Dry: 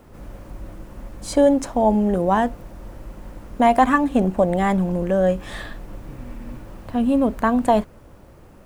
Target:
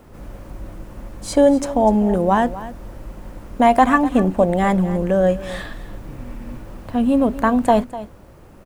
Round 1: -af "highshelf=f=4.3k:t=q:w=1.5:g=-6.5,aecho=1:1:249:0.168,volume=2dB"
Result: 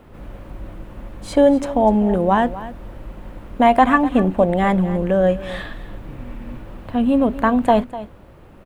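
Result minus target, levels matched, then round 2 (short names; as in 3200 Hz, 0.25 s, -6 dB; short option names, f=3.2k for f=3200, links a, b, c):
8000 Hz band -8.0 dB
-af "aecho=1:1:249:0.168,volume=2dB"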